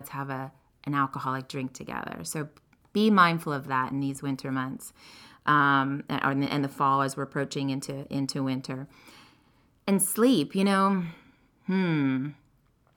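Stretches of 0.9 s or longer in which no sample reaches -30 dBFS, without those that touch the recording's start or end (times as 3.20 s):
8.79–9.88 s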